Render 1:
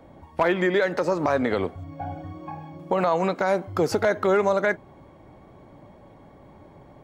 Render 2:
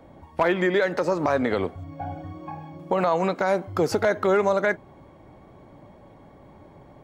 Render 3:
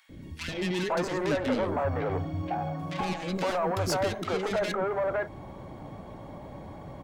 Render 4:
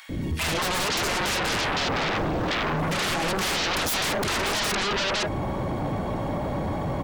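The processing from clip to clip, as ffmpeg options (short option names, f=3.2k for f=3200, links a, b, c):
-af anull
-filter_complex "[0:a]asplit=2[a][b];[b]acompressor=threshold=-29dB:ratio=6,volume=1dB[c];[a][c]amix=inputs=2:normalize=0,asoftclip=type=tanh:threshold=-24dB,acrossover=split=380|1800[d][e][f];[d]adelay=90[g];[e]adelay=510[h];[g][h][f]amix=inputs=3:normalize=0,volume=1dB"
-af "aeval=exprs='0.158*sin(PI/2*8.91*val(0)/0.158)':c=same,volume=-6.5dB"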